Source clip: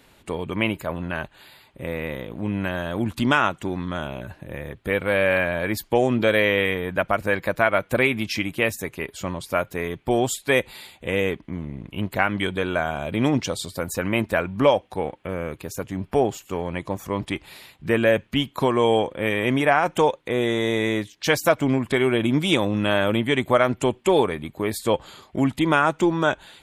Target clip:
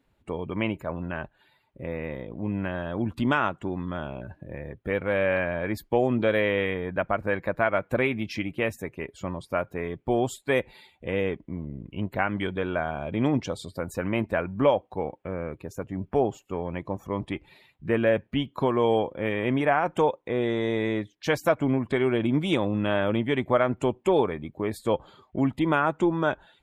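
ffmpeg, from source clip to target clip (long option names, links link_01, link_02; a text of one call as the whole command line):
ffmpeg -i in.wav -af "afftdn=noise_reduction=13:noise_floor=-44,highshelf=frequency=2500:gain=-9.5,volume=-3dB" out.wav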